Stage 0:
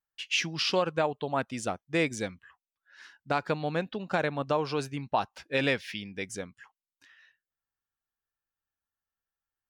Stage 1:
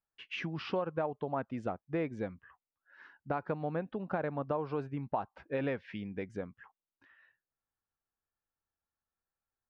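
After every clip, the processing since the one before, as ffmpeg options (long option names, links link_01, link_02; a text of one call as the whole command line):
ffmpeg -i in.wav -af "lowpass=1300,acompressor=threshold=-38dB:ratio=2,volume=2dB" out.wav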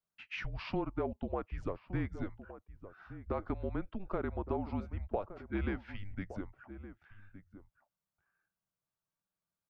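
ffmpeg -i in.wav -filter_complex "[0:a]afreqshift=-200,asplit=2[link_01][link_02];[link_02]adelay=1166,volume=-13dB,highshelf=frequency=4000:gain=-26.2[link_03];[link_01][link_03]amix=inputs=2:normalize=0,volume=-1.5dB" out.wav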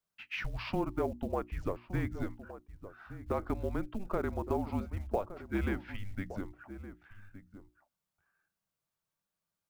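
ffmpeg -i in.wav -af "acrusher=bits=8:mode=log:mix=0:aa=0.000001,bandreject=frequency=60:width_type=h:width=6,bandreject=frequency=120:width_type=h:width=6,bandreject=frequency=180:width_type=h:width=6,bandreject=frequency=240:width_type=h:width=6,bandreject=frequency=300:width_type=h:width=6,bandreject=frequency=360:width_type=h:width=6,volume=3dB" out.wav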